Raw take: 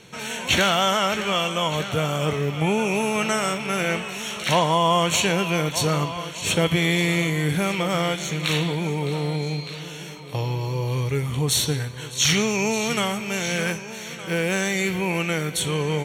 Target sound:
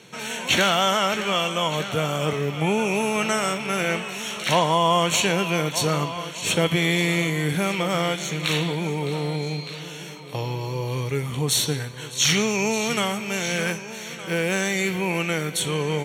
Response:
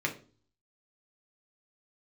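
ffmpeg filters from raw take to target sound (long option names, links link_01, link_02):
-af "highpass=130"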